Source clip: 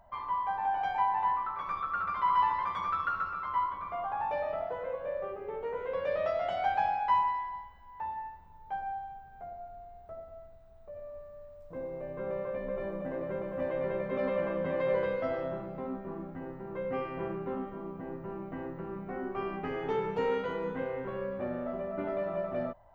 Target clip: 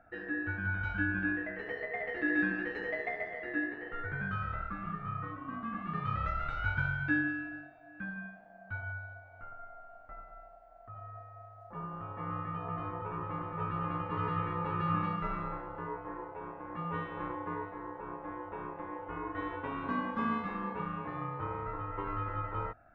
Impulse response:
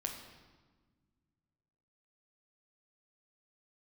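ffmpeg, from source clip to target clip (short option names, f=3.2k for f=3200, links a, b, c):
-af "highshelf=f=2.4k:g=-11,aeval=exprs='val(0)*sin(2*PI*690*n/s)':c=same,volume=1dB"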